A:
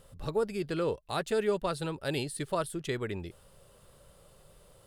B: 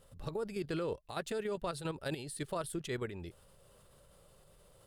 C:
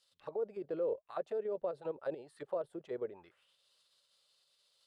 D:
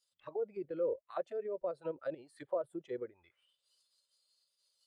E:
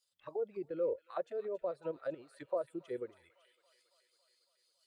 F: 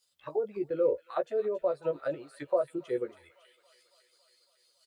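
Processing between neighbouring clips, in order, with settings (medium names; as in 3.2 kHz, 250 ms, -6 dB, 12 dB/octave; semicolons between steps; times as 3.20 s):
peak limiter -27 dBFS, peak gain reduction 9 dB; level held to a coarse grid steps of 9 dB; trim +1 dB
auto-wah 530–4900 Hz, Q 3.3, down, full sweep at -35 dBFS; trim +5.5 dB
spectral noise reduction 12 dB; random flutter of the level, depth 60%; trim +3 dB
feedback echo behind a high-pass 277 ms, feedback 69%, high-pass 2.1 kHz, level -10 dB
doubling 14 ms -5.5 dB; trim +6.5 dB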